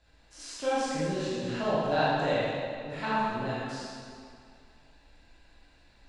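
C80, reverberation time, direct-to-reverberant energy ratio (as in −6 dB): −1.5 dB, 2.3 s, −9.5 dB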